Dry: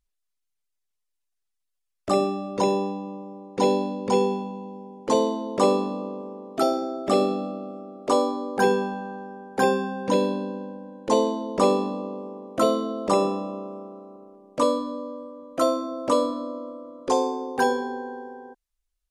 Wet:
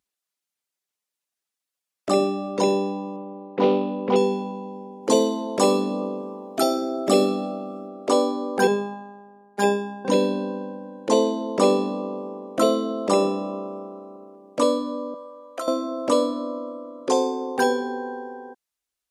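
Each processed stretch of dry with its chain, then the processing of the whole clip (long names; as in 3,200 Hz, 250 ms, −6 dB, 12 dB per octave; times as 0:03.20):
0:03.16–0:04.16: low-pass filter 3,200 Hz 24 dB per octave + highs frequency-modulated by the lows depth 0.16 ms
0:05.03–0:07.88: high-shelf EQ 8,400 Hz +10.5 dB + phase shifter 1 Hz, delay 1.4 ms, feedback 22%
0:08.67–0:10.05: amplitude modulation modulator 62 Hz, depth 15% + phases set to zero 202 Hz + multiband upward and downward expander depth 70%
0:15.14–0:15.68: high-pass filter 580 Hz + downward compressor 5 to 1, threshold −29 dBFS
whole clip: high-pass filter 180 Hz; dynamic equaliser 1,000 Hz, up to −5 dB, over −34 dBFS, Q 1.1; level +3.5 dB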